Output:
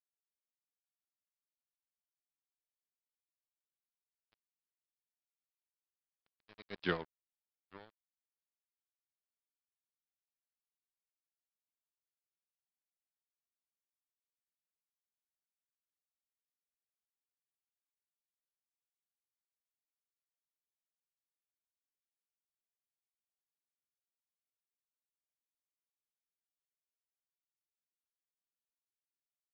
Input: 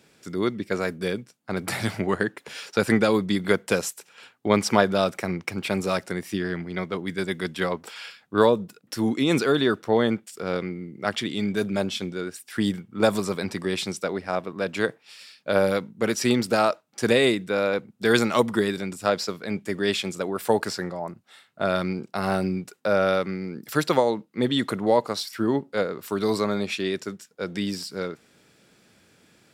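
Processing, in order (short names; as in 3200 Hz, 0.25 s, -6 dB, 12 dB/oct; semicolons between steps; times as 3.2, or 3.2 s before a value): Doppler pass-by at 6.86, 33 m/s, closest 1.7 m; crossover distortion -38.5 dBFS; downsampling 11025 Hz; gain -4 dB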